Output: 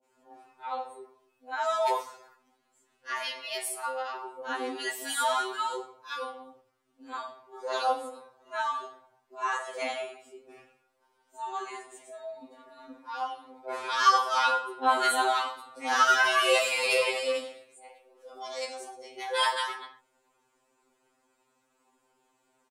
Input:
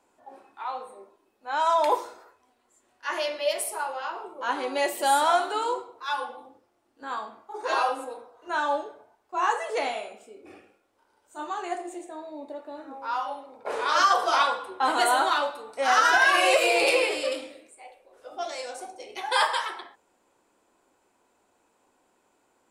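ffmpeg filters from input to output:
ffmpeg -i in.wav -filter_complex "[0:a]acrossover=split=170|610[link_01][link_02][link_03];[link_03]adelay=40[link_04];[link_01]adelay=100[link_05];[link_05][link_02][link_04]amix=inputs=3:normalize=0,afftfilt=real='re*2.45*eq(mod(b,6),0)':imag='im*2.45*eq(mod(b,6),0)':win_size=2048:overlap=0.75" out.wav

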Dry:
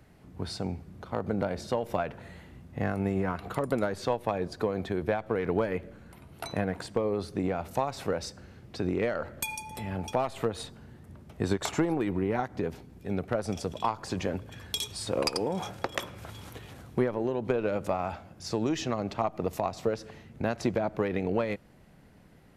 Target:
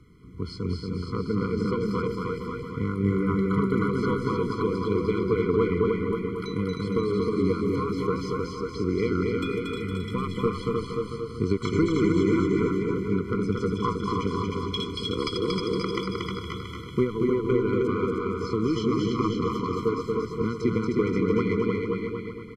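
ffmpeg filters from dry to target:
ffmpeg -i in.wav -filter_complex "[0:a]asplit=2[link_01][link_02];[link_02]aecho=0:1:232|464|696|928|1160:0.668|0.247|0.0915|0.0339|0.0125[link_03];[link_01][link_03]amix=inputs=2:normalize=0,acrossover=split=5300[link_04][link_05];[link_05]acompressor=threshold=-54dB:ratio=4:attack=1:release=60[link_06];[link_04][link_06]amix=inputs=2:normalize=0,highshelf=frequency=9400:gain=-11.5,asplit=2[link_07][link_08];[link_08]aecho=0:1:310|527|678.9|785.2|859.7:0.631|0.398|0.251|0.158|0.1[link_09];[link_07][link_09]amix=inputs=2:normalize=0,afftfilt=real='re*eq(mod(floor(b*sr/1024/490),2),0)':imag='im*eq(mod(floor(b*sr/1024/490),2),0)':win_size=1024:overlap=0.75,volume=3.5dB" out.wav

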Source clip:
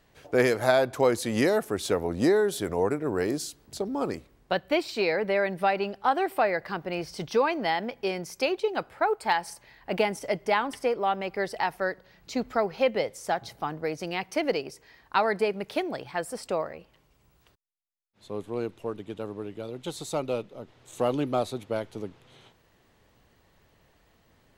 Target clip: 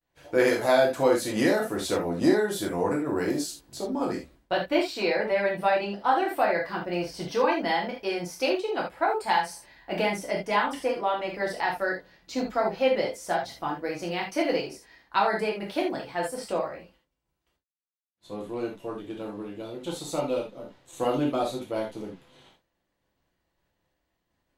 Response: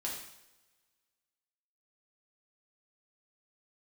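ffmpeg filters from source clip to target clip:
-filter_complex "[0:a]agate=range=-33dB:threshold=-52dB:ratio=3:detection=peak[link_01];[1:a]atrim=start_sample=2205,atrim=end_sample=3969[link_02];[link_01][link_02]afir=irnorm=-1:irlink=0"

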